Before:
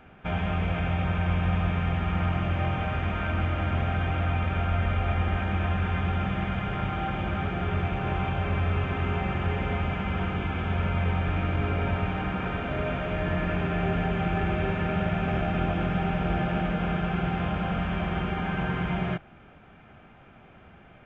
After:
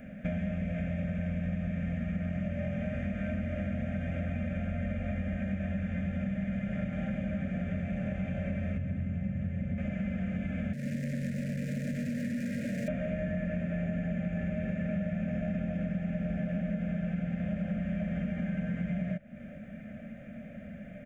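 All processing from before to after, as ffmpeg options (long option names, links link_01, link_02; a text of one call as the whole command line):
ffmpeg -i in.wav -filter_complex "[0:a]asettb=1/sr,asplit=3[link_01][link_02][link_03];[link_01]atrim=end=8.774[link_04];[link_02]atrim=start=8.77:end=9.78,asetpts=PTS-STARTPTS,afade=type=in:duration=0.004:curve=qsin,afade=type=out:start_time=1.006:duration=0.004:curve=qsin,acrossover=split=290|900[link_05][link_06][link_07];[link_05]acompressor=threshold=-34dB:ratio=4[link_08];[link_06]acompressor=threshold=-45dB:ratio=4[link_09];[link_07]acompressor=threshold=-45dB:ratio=4[link_10];[link_08][link_09][link_10]amix=inputs=3:normalize=0,equalizer=frequency=110:width=0.97:gain=13[link_11];[link_03]atrim=start=9.776[link_12];[link_04][link_11]acrossfade=duration=0.004:curve1=hsin:curve2=qsin[link_13];[link_13][link_12]acrossfade=duration=0.004:curve1=qsin:curve2=hsin,asettb=1/sr,asplit=3[link_14][link_15][link_16];[link_14]atrim=end=10.734[link_17];[link_15]atrim=start=10.73:end=12.88,asetpts=PTS-STARTPTS,afade=type=in:duration=0.004:curve=qsin,afade=type=out:start_time=2.146:duration=0.004:curve=qsin,afreqshift=55,volume=32.5dB,asoftclip=hard,volume=-32.5dB,asuperstop=centerf=940:order=8:qfactor=1.1[link_18];[link_16]atrim=start=12.876[link_19];[link_17][link_18]acrossfade=duration=0.004:curve1=hsin:curve2=qsin[link_20];[link_20][link_19]acrossfade=duration=0.004:curve1=qsin:curve2=hsin,firequalizer=gain_entry='entry(120,0);entry(220,15);entry(370,-16);entry(580,12);entry(880,-26);entry(1800,4);entry(3100,-9);entry(7100,9)':delay=0.05:min_phase=1,acompressor=threshold=-33dB:ratio=6,volume=2dB" out.wav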